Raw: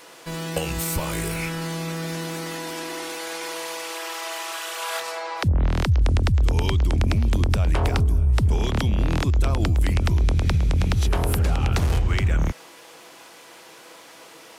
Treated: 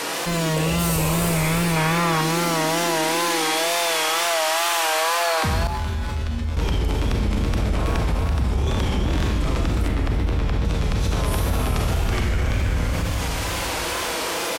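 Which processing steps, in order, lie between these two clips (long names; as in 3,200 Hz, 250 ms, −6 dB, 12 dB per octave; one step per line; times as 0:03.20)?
single-tap delay 330 ms −6 dB
brickwall limiter −19.5 dBFS, peak gain reduction 10 dB
four-comb reverb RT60 2.3 s, combs from 29 ms, DRR −3.5 dB
tape wow and flutter 75 cents
0:01.76–0:02.21: parametric band 1,200 Hz +8.5 dB 1.8 octaves
0:05.67–0:06.57: tuned comb filter 78 Hz, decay 0.77 s, harmonics odd, mix 90%
0:09.88–0:10.65: parametric band 10,000 Hz −8.5 dB 2 octaves
envelope flattener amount 70%
level −2 dB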